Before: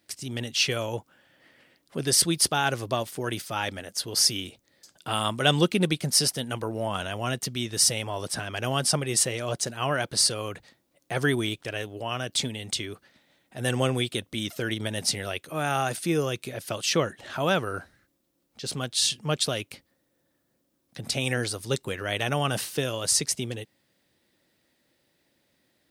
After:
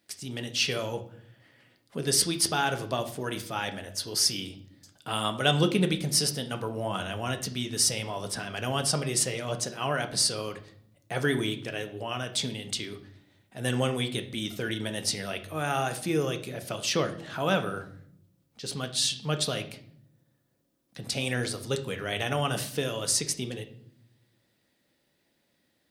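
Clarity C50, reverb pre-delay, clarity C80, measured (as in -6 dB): 12.5 dB, 4 ms, 16.5 dB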